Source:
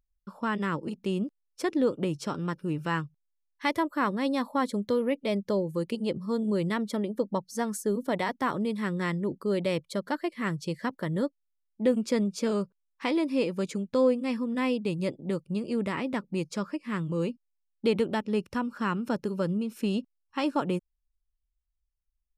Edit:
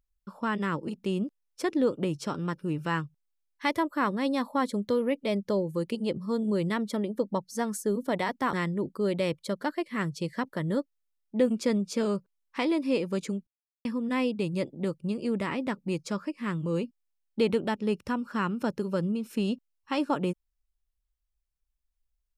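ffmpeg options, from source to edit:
ffmpeg -i in.wav -filter_complex "[0:a]asplit=4[link_01][link_02][link_03][link_04];[link_01]atrim=end=8.532[link_05];[link_02]atrim=start=8.988:end=13.93,asetpts=PTS-STARTPTS,afade=type=out:start_time=4.938:duration=0.004:curve=hsin[link_06];[link_03]atrim=start=13.93:end=14.31,asetpts=PTS-STARTPTS,volume=0[link_07];[link_04]atrim=start=14.31,asetpts=PTS-STARTPTS,afade=type=in:duration=0.004:curve=hsin[link_08];[link_06][link_07][link_08]concat=n=3:v=0:a=1[link_09];[link_05][link_09]acrossfade=duration=0.004:curve1=hsin:curve2=hsin" out.wav

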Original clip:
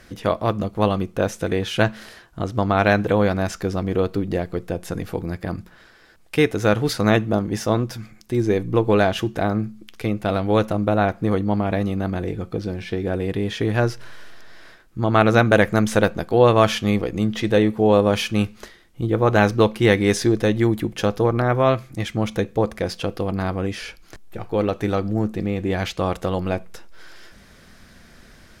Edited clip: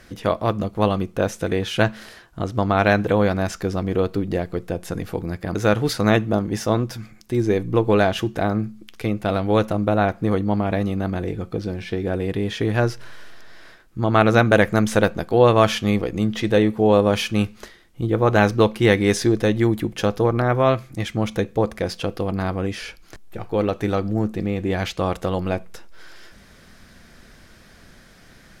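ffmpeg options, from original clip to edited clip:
ffmpeg -i in.wav -filter_complex "[0:a]asplit=2[link_01][link_02];[link_01]atrim=end=5.552[link_03];[link_02]atrim=start=6.548[link_04];[link_03][link_04]acrossfade=duration=0.004:curve1=hsin:curve2=hsin" out.wav

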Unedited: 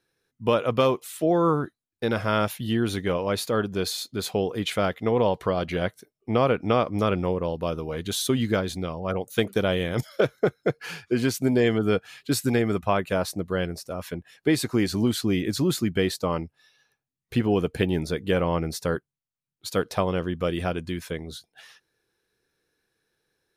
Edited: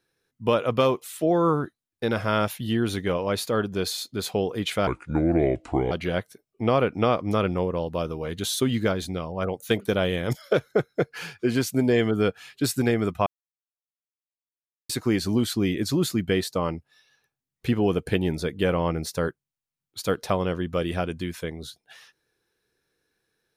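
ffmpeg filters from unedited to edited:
ffmpeg -i in.wav -filter_complex "[0:a]asplit=5[link_01][link_02][link_03][link_04][link_05];[link_01]atrim=end=4.874[link_06];[link_02]atrim=start=4.87:end=5.59,asetpts=PTS-STARTPTS,asetrate=30429,aresample=44100,atrim=end_sample=46017,asetpts=PTS-STARTPTS[link_07];[link_03]atrim=start=5.586:end=12.94,asetpts=PTS-STARTPTS,afade=type=out:start_time=7.35:duration=0.004:curve=hsin[link_08];[link_04]atrim=start=12.94:end=14.57,asetpts=PTS-STARTPTS,volume=0[link_09];[link_05]atrim=start=14.57,asetpts=PTS-STARTPTS,afade=type=in:duration=0.004:curve=hsin[link_10];[link_06][link_07]acrossfade=duration=0.004:curve1=hsin:curve2=hsin[link_11];[link_08][link_09][link_10]concat=n=3:v=0:a=1[link_12];[link_11][link_12]acrossfade=duration=0.004:curve1=hsin:curve2=hsin" out.wav

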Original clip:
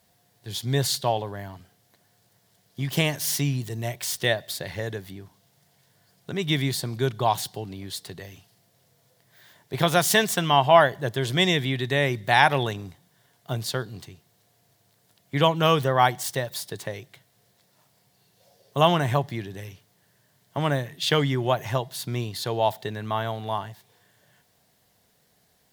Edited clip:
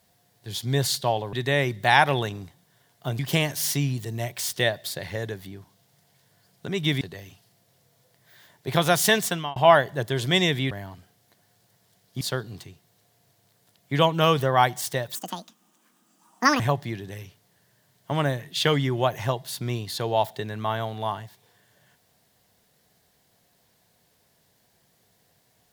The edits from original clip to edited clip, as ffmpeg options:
ffmpeg -i in.wav -filter_complex "[0:a]asplit=9[link_01][link_02][link_03][link_04][link_05][link_06][link_07][link_08][link_09];[link_01]atrim=end=1.332[link_10];[link_02]atrim=start=11.768:end=13.632[link_11];[link_03]atrim=start=2.828:end=6.652[link_12];[link_04]atrim=start=8.068:end=10.62,asetpts=PTS-STARTPTS,afade=type=out:start_time=2.242:duration=0.31[link_13];[link_05]atrim=start=10.62:end=11.772,asetpts=PTS-STARTPTS,afade=type=in:duration=0.004:curve=hsin[link_14];[link_06]atrim=start=1.328:end=2.832[link_15];[link_07]atrim=start=13.628:end=16.574[link_16];[link_08]atrim=start=16.57:end=19.06,asetpts=PTS-STARTPTS,asetrate=75852,aresample=44100,atrim=end_sample=63842,asetpts=PTS-STARTPTS[link_17];[link_09]atrim=start=19.056[link_18];[link_10][link_11]acrossfade=duration=0.004:curve1=hsin:curve2=hsin[link_19];[link_19][link_12]acrossfade=duration=0.004:curve1=hsin:curve2=hsin[link_20];[link_13][link_14]concat=n=2:v=0:a=1[link_21];[link_20][link_21]acrossfade=duration=0.004:curve1=hsin:curve2=hsin[link_22];[link_22][link_15]acrossfade=duration=0.004:curve1=hsin:curve2=hsin[link_23];[link_23][link_16]acrossfade=duration=0.004:curve1=hsin:curve2=hsin[link_24];[link_24][link_17]acrossfade=duration=0.004:curve1=hsin:curve2=hsin[link_25];[link_25][link_18]acrossfade=duration=0.004:curve1=hsin:curve2=hsin" out.wav

